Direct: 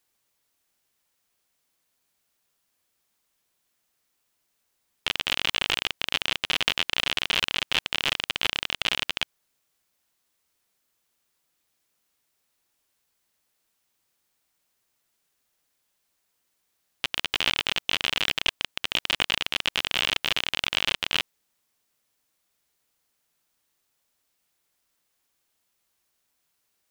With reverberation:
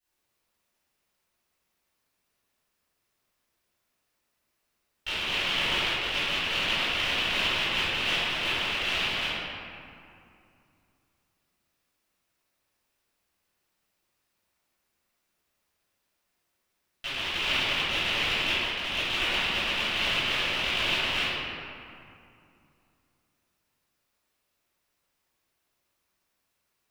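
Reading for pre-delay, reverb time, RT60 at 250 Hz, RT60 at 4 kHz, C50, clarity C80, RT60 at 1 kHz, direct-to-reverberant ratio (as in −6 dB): 3 ms, 2.5 s, 3.1 s, 1.4 s, −6.0 dB, −2.5 dB, 2.5 s, −17.5 dB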